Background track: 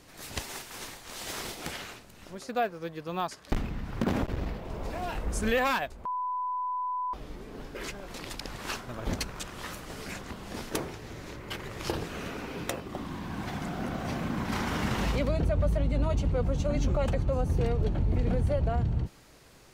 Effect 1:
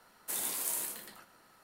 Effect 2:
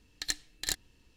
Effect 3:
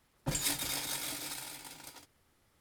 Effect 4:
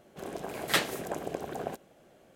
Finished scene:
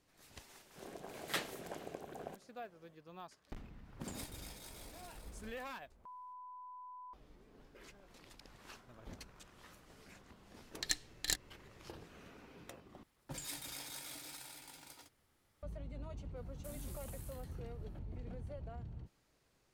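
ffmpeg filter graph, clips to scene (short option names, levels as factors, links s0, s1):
-filter_complex "[3:a]asplit=2[s0][s1];[0:a]volume=0.106[s2];[s1]acompressor=threshold=0.00141:ratio=1.5:attack=26:release=31:knee=1:detection=peak[s3];[1:a]acompressor=threshold=0.0126:ratio=6:attack=3.2:release=140:knee=1:detection=peak[s4];[s2]asplit=2[s5][s6];[s5]atrim=end=13.034[s7];[s3]atrim=end=2.6,asetpts=PTS-STARTPTS,volume=0.596[s8];[s6]atrim=start=15.626[s9];[4:a]atrim=end=2.35,asetpts=PTS-STARTPTS,volume=0.266,afade=t=in:d=0.004:c=hsin,afade=t=out:st=2.346:d=0.004:c=hsin,adelay=600[s10];[s0]atrim=end=2.6,asetpts=PTS-STARTPTS,volume=0.141,afade=t=in:d=0.004:c=hsin,afade=t=out:st=2.596:d=0.004:c=hsin,adelay=164493S[s11];[2:a]atrim=end=1.16,asetpts=PTS-STARTPTS,volume=0.708,afade=t=in:d=0.004:c=hsin,afade=t=out:st=1.156:d=0.004:c=hsin,adelay=10610[s12];[s4]atrim=end=1.63,asetpts=PTS-STARTPTS,volume=0.224,afade=t=in:d=0.004:c=hsin,afade=t=out:st=1.626:d=0.004:c=hsin,adelay=721476S[s13];[s7][s8]acrossfade=d=0.004:c1=hsin:c2=hsin[s14];[s14][s9]acrossfade=d=0.004:c1=hsin:c2=hsin[s15];[s15][s10][s11][s12][s13]amix=inputs=5:normalize=0"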